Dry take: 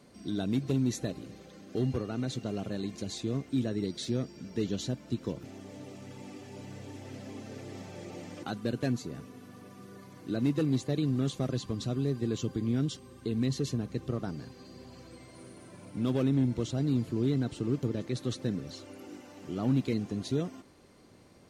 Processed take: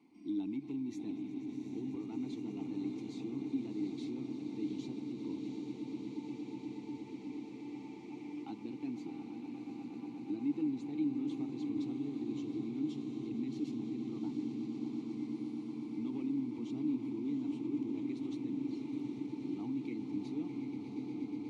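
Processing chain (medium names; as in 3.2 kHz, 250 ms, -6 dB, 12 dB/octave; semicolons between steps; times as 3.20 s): echo with a slow build-up 120 ms, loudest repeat 8, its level -15.5 dB; peak limiter -24.5 dBFS, peak gain reduction 7.5 dB; vowel filter u; treble shelf 4.2 kHz +9.5 dB; echo that smears into a reverb 735 ms, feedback 73%, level -7 dB; trim +3 dB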